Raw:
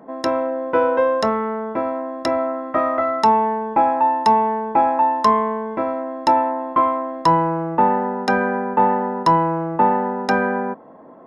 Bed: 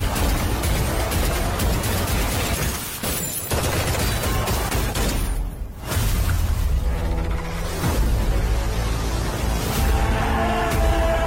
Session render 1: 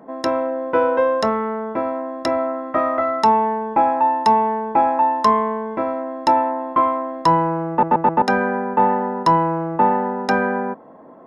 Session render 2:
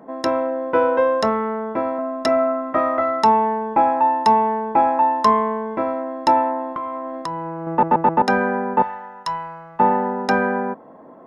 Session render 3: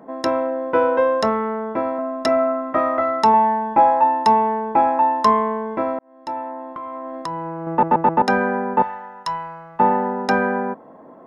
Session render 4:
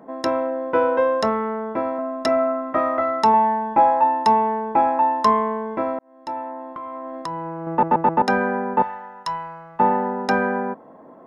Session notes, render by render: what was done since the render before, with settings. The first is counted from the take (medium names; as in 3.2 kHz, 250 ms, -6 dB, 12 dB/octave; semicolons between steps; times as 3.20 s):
7.70 s: stutter in place 0.13 s, 4 plays
1.98–2.73 s: comb 4.6 ms; 6.73–7.67 s: compression, threshold -24 dBFS; 8.82–9.80 s: amplifier tone stack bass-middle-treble 10-0-10
3.32–4.04 s: doubling 17 ms -5.5 dB; 5.99–7.34 s: fade in
trim -1.5 dB